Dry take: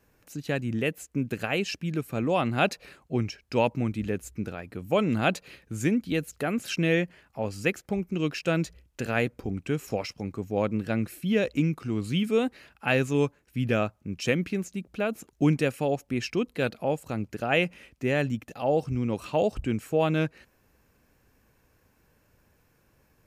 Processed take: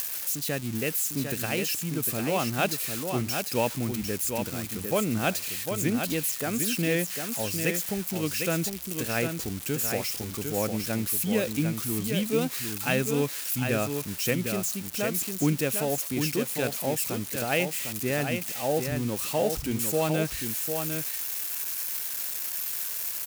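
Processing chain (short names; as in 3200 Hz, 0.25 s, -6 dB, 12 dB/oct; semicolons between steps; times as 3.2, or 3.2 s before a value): switching spikes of -21.5 dBFS; echo 0.752 s -6 dB; upward compressor, threshold -27 dBFS; gain -2.5 dB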